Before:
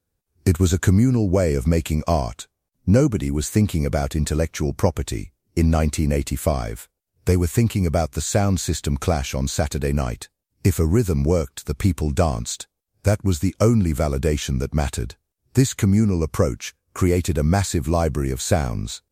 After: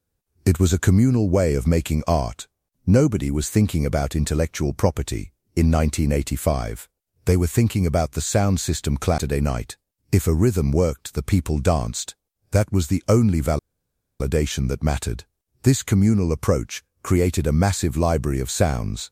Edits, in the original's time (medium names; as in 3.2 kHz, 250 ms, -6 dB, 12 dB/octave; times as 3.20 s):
9.18–9.70 s: delete
14.11 s: insert room tone 0.61 s